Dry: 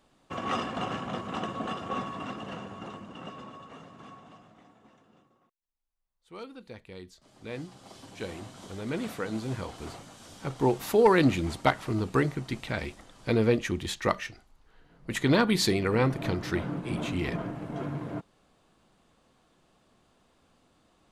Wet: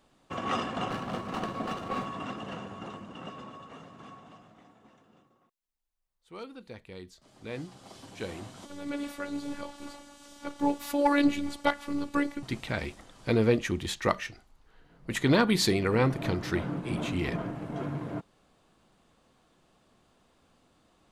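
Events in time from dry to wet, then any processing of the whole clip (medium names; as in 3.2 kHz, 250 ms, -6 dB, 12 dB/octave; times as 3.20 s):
0.90–2.06 s: sliding maximum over 5 samples
8.65–12.43 s: robot voice 286 Hz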